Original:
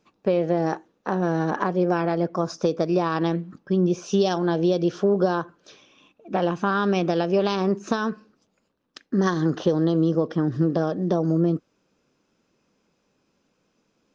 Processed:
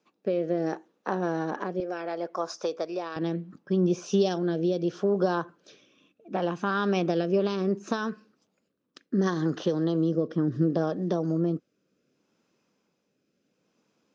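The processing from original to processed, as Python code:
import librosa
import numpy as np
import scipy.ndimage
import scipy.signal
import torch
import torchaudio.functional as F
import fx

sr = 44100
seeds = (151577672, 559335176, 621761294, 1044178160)

y = fx.highpass(x, sr, hz=fx.steps((0.0, 210.0), (1.8, 520.0), (3.16, 120.0)), slope=12)
y = fx.rotary(y, sr, hz=0.7)
y = y * librosa.db_to_amplitude(-2.0)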